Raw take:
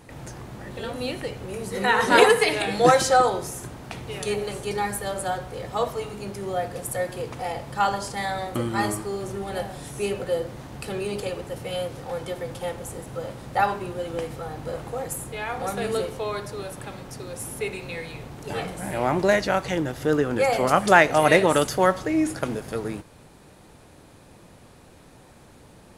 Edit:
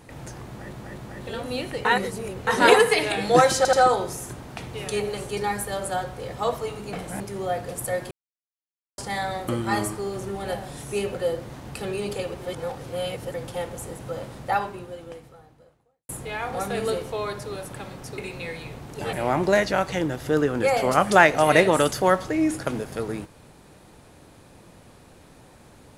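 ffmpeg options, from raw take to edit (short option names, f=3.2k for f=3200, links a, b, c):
-filter_complex "[0:a]asplit=16[a][b][c][d][e][f][g][h][i][j][k][l][m][n][o][p];[a]atrim=end=0.732[q];[b]atrim=start=0.478:end=0.732[r];[c]atrim=start=0.478:end=1.352[s];[d]atrim=start=1.348:end=1.972,asetpts=PTS-STARTPTS,areverse[t];[e]atrim=start=1.968:end=3.152[u];[f]atrim=start=3.068:end=3.152[v];[g]atrim=start=3.068:end=6.272[w];[h]atrim=start=18.618:end=18.892[x];[i]atrim=start=6.268:end=7.18,asetpts=PTS-STARTPTS,afade=t=out:st=0.908:d=0.004:c=hsin[y];[j]atrim=start=7.18:end=8.05,asetpts=PTS-STARTPTS,volume=0[z];[k]atrim=start=8.05:end=11.472,asetpts=PTS-STARTPTS,afade=t=in:d=0.004:c=hsin[aa];[l]atrim=start=11.468:end=12.412,asetpts=PTS-STARTPTS,areverse[ab];[m]atrim=start=12.408:end=15.16,asetpts=PTS-STARTPTS,afade=t=out:st=0.982:d=1.77:c=qua[ac];[n]atrim=start=15.16:end=17.252,asetpts=PTS-STARTPTS,afade=t=in:d=0.004:c=hsin[ad];[o]atrim=start=17.668:end=18.622[ae];[p]atrim=start=18.888[af];[q][r]acrossfade=d=0.004:c1=hsin:c2=hsin[ag];[ag][s]acrossfade=d=0.004:c1=hsin:c2=hsin[ah];[ah][t]acrossfade=d=0.004:c1=hsin:c2=hsin[ai];[ai][u]acrossfade=d=0.004:c1=hsin:c2=hsin[aj];[aj][v]acrossfade=d=0.004:c1=hsin:c2=hsin[ak];[ak][w]acrossfade=d=0.004:c1=hsin:c2=hsin[al];[al][x]acrossfade=d=0.004:c1=hsin:c2=hsin[am];[y][z][aa]concat=n=3:v=0:a=1[an];[am][an]acrossfade=d=0.004:c1=hsin:c2=hsin[ao];[ao][ab]acrossfade=d=0.004:c1=hsin:c2=hsin[ap];[ac][ad]concat=n=2:v=0:a=1[aq];[ap][aq]acrossfade=d=0.004:c1=hsin:c2=hsin[ar];[ar][ae]acrossfade=d=0.004:c1=hsin:c2=hsin[as];[as][af]acrossfade=d=0.004:c1=hsin:c2=hsin"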